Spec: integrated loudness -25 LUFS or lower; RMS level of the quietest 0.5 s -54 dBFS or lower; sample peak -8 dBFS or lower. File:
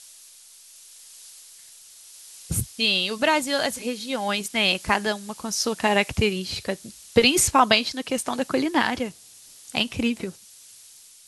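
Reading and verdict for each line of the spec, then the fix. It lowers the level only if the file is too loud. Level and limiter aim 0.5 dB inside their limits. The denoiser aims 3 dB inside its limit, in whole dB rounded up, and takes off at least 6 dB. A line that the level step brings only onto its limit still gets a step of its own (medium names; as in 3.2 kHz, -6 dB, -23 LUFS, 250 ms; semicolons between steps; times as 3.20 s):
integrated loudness -23.0 LUFS: fail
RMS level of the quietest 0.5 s -49 dBFS: fail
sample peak -4.5 dBFS: fail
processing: noise reduction 6 dB, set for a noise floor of -49 dBFS; trim -2.5 dB; peak limiter -8.5 dBFS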